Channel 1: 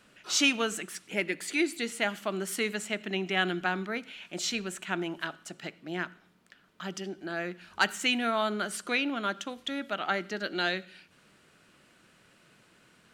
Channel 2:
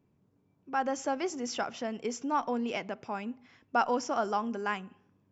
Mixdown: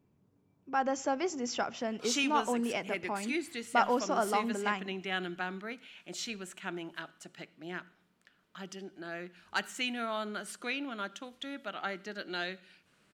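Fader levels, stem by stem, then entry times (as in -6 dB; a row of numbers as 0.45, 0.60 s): -7.0, 0.0 dB; 1.75, 0.00 s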